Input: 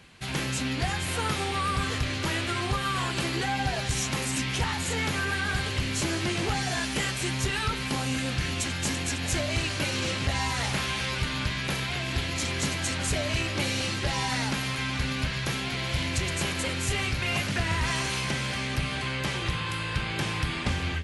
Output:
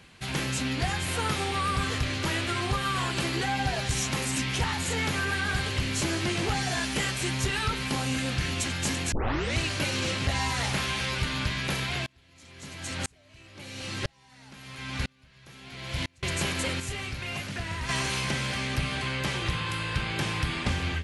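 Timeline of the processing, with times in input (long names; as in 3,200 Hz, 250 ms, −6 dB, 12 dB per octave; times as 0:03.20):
0:09.12: tape start 0.45 s
0:12.06–0:16.23: tremolo with a ramp in dB swelling 1 Hz, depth 36 dB
0:16.80–0:17.89: clip gain −6.5 dB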